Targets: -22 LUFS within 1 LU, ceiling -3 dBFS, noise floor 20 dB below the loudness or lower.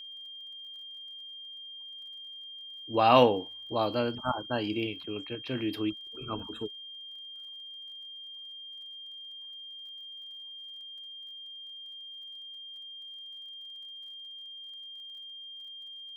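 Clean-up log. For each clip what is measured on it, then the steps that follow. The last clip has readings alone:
ticks 35/s; steady tone 3200 Hz; tone level -42 dBFS; loudness -34.5 LUFS; peak -7.0 dBFS; loudness target -22.0 LUFS
-> de-click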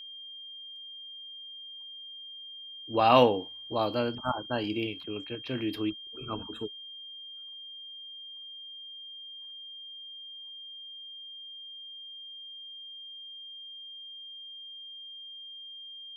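ticks 0.12/s; steady tone 3200 Hz; tone level -42 dBFS
-> notch 3200 Hz, Q 30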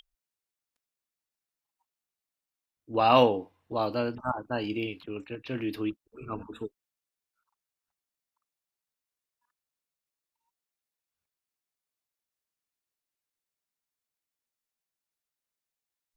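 steady tone none; loudness -28.5 LUFS; peak -7.5 dBFS; loudness target -22.0 LUFS
-> gain +6.5 dB; limiter -3 dBFS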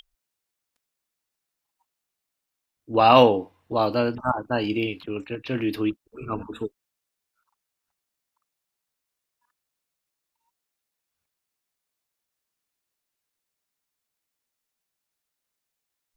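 loudness -22.5 LUFS; peak -3.0 dBFS; noise floor -84 dBFS

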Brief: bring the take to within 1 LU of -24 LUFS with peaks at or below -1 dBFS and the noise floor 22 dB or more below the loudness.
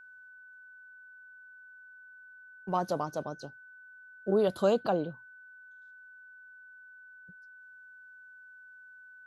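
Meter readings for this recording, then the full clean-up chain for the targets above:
steady tone 1500 Hz; tone level -50 dBFS; loudness -31.0 LUFS; peak -13.5 dBFS; loudness target -24.0 LUFS
-> notch 1500 Hz, Q 30; gain +7 dB

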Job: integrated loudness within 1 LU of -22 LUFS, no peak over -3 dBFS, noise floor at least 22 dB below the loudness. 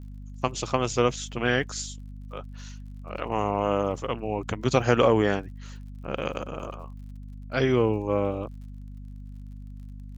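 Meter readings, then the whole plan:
ticks 49/s; hum 50 Hz; harmonics up to 250 Hz; hum level -38 dBFS; loudness -26.5 LUFS; peak -6.0 dBFS; loudness target -22.0 LUFS
-> de-click; de-hum 50 Hz, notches 5; gain +4.5 dB; limiter -3 dBFS

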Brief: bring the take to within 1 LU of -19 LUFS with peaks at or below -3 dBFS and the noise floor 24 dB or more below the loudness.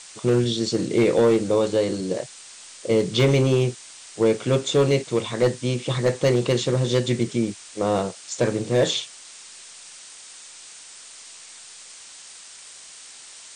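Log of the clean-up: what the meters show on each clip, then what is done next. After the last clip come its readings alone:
clipped 0.8%; flat tops at -12.0 dBFS; noise floor -44 dBFS; noise floor target -46 dBFS; loudness -22.0 LUFS; peak -12.0 dBFS; loudness target -19.0 LUFS
-> clip repair -12 dBFS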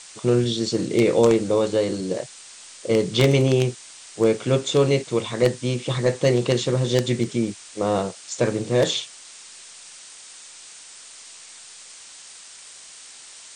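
clipped 0.0%; noise floor -44 dBFS; noise floor target -46 dBFS
-> noise print and reduce 6 dB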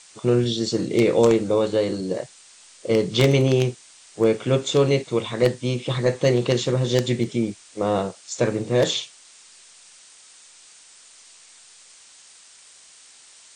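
noise floor -50 dBFS; loudness -22.0 LUFS; peak -3.0 dBFS; loudness target -19.0 LUFS
-> gain +3 dB; limiter -3 dBFS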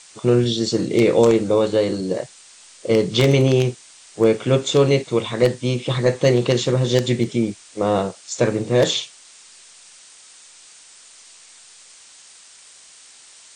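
loudness -19.0 LUFS; peak -3.0 dBFS; noise floor -47 dBFS

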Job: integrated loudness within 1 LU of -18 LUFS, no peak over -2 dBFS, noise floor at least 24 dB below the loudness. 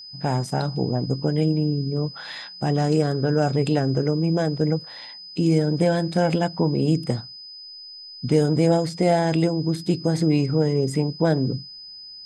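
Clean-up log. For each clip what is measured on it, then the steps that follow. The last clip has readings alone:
steady tone 5000 Hz; tone level -38 dBFS; loudness -22.5 LUFS; peak -7.0 dBFS; loudness target -18.0 LUFS
-> notch 5000 Hz, Q 30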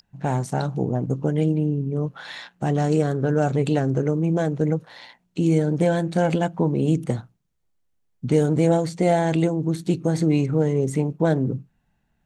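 steady tone none; loudness -22.5 LUFS; peak -7.0 dBFS; loudness target -18.0 LUFS
-> gain +4.5 dB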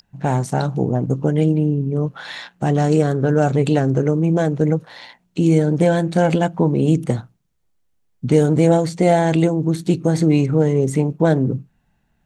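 loudness -18.0 LUFS; peak -2.5 dBFS; noise floor -65 dBFS

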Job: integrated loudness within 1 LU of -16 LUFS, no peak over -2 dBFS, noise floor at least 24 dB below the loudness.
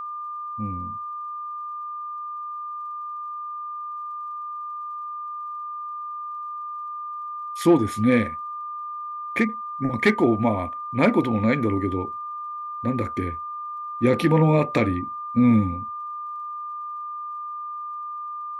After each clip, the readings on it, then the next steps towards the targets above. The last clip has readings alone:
ticks 43/s; steady tone 1200 Hz; tone level -30 dBFS; loudness -26.0 LUFS; peak -6.0 dBFS; loudness target -16.0 LUFS
-> de-click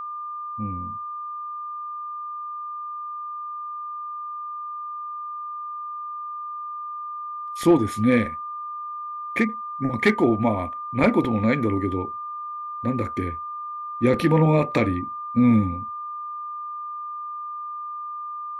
ticks 0.054/s; steady tone 1200 Hz; tone level -30 dBFS
-> notch 1200 Hz, Q 30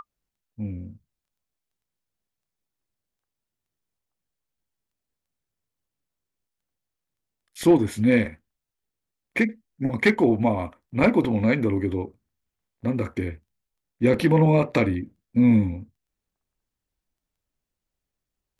steady tone none; loudness -22.5 LUFS; peak -5.5 dBFS; loudness target -16.0 LUFS
-> gain +6.5 dB; limiter -2 dBFS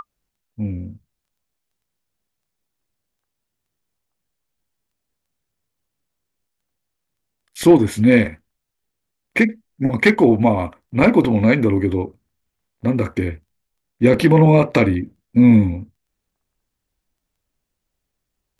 loudness -16.5 LUFS; peak -2.0 dBFS; noise floor -79 dBFS

